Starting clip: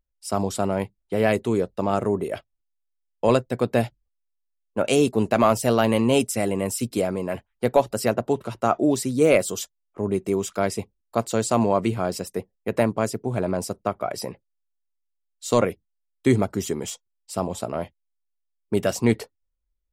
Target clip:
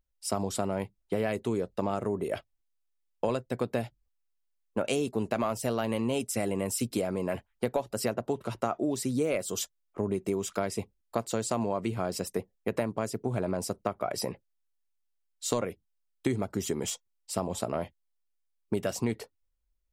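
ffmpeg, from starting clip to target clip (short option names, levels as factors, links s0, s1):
-af "acompressor=threshold=0.0501:ratio=6"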